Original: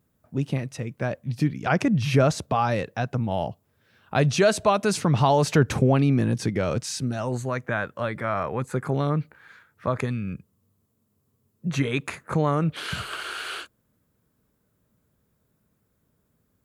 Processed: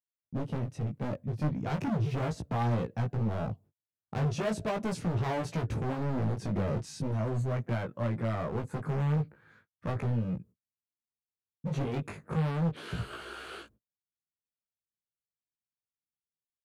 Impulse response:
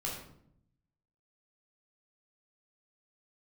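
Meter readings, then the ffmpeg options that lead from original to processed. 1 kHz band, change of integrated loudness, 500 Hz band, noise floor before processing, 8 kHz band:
−11.0 dB, −8.0 dB, −10.5 dB, −72 dBFS, −15.0 dB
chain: -af "agate=range=-43dB:threshold=-51dB:ratio=16:detection=peak,tiltshelf=frequency=690:gain=8.5,dynaudnorm=framelen=150:gausssize=3:maxgain=3.5dB,volume=19dB,asoftclip=hard,volume=-19dB,flanger=delay=17:depth=3:speed=0.38,volume=-6dB"

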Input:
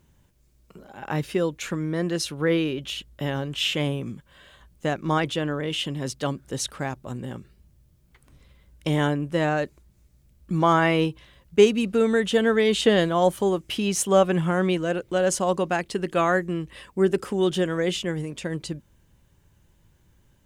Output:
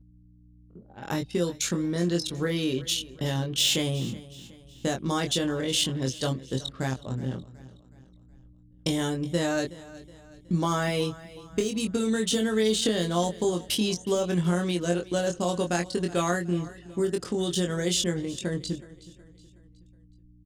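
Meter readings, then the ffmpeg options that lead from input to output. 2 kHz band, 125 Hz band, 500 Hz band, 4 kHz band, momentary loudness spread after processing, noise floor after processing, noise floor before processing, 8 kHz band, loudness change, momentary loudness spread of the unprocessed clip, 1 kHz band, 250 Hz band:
−6.0 dB, −1.5 dB, −5.5 dB, +1.0 dB, 9 LU, −55 dBFS, −61 dBFS, +2.0 dB, −3.5 dB, 13 LU, −7.0 dB, −2.5 dB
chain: -filter_complex "[0:a]deesser=0.7,aemphasis=mode=reproduction:type=75fm,anlmdn=0.631,equalizer=frequency=1000:width=0.67:gain=-5,acompressor=threshold=-23dB:ratio=12,crystalizer=i=2:c=0,aeval=exprs='val(0)+0.00224*(sin(2*PI*60*n/s)+sin(2*PI*2*60*n/s)/2+sin(2*PI*3*60*n/s)/3+sin(2*PI*4*60*n/s)/4+sin(2*PI*5*60*n/s)/5)':channel_layout=same,aexciter=amount=5.5:drive=4.8:freq=3700,asplit=2[link_01][link_02];[link_02]adelay=23,volume=-4dB[link_03];[link_01][link_03]amix=inputs=2:normalize=0,aecho=1:1:370|740|1110|1480:0.119|0.0535|0.0241|0.0108"

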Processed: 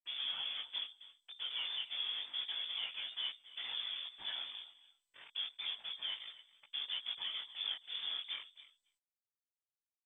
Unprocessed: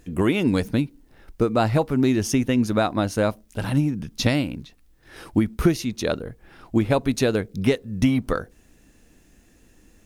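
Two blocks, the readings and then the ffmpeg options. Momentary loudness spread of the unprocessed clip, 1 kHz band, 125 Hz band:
7 LU, −27.0 dB, below −40 dB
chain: -filter_complex "[0:a]acompressor=threshold=-38dB:ratio=2,acrusher=bits=5:mix=0:aa=0.000001,highshelf=frequency=2200:gain=-7.5,bandreject=frequency=60:width_type=h:width=6,bandreject=frequency=120:width_type=h:width=6,bandreject=frequency=180:width_type=h:width=6,bandreject=frequency=240:width_type=h:width=6,bandreject=frequency=300:width_type=h:width=6,asplit=2[link_01][link_02];[link_02]aecho=0:1:272|544:0.126|0.0227[link_03];[link_01][link_03]amix=inputs=2:normalize=0,agate=range=-33dB:threshold=-58dB:ratio=3:detection=peak,asoftclip=type=hard:threshold=-29.5dB,afftfilt=real='hypot(re,im)*cos(2*PI*random(0))':imag='hypot(re,im)*sin(2*PI*random(1))':win_size=512:overlap=0.75,lowpass=frequency=3100:width_type=q:width=0.5098,lowpass=frequency=3100:width_type=q:width=0.6013,lowpass=frequency=3100:width_type=q:width=0.9,lowpass=frequency=3100:width_type=q:width=2.563,afreqshift=-3600,flanger=delay=15:depth=7.2:speed=0.3,lowshelf=frequency=93:gain=-7.5,volume=2dB" -ar 32000 -c:a mp2 -b:a 128k

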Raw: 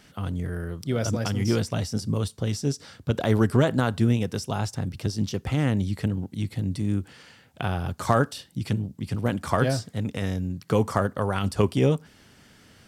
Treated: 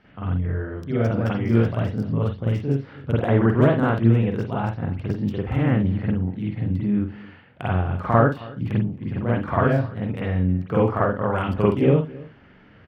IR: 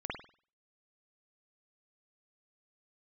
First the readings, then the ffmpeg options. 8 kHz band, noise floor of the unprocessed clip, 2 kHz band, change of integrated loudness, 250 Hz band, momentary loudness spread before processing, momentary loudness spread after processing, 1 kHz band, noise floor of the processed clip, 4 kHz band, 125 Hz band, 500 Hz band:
below −20 dB, −56 dBFS, +3.0 dB, +4.0 dB, +4.0 dB, 9 LU, 9 LU, +4.0 dB, −51 dBFS, can't be measured, +4.0 dB, +4.0 dB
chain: -filter_complex "[0:a]acrossover=split=4200[link_01][link_02];[link_02]acompressor=threshold=-49dB:ratio=4:attack=1:release=60[link_03];[link_01][link_03]amix=inputs=2:normalize=0,equalizer=frequency=3600:width_type=o:width=0.42:gain=-4,acrossover=split=3400[link_04][link_05];[link_05]acrusher=bits=5:mix=0:aa=0.5[link_06];[link_04][link_06]amix=inputs=2:normalize=0,asplit=2[link_07][link_08];[link_08]adelay=268.2,volume=-21dB,highshelf=frequency=4000:gain=-6.04[link_09];[link_07][link_09]amix=inputs=2:normalize=0[link_10];[1:a]atrim=start_sample=2205,afade=type=out:start_time=0.19:duration=0.01,atrim=end_sample=8820,asetrate=48510,aresample=44100[link_11];[link_10][link_11]afir=irnorm=-1:irlink=0,volume=2.5dB" -ar 48000 -c:a libmp3lame -b:a 80k

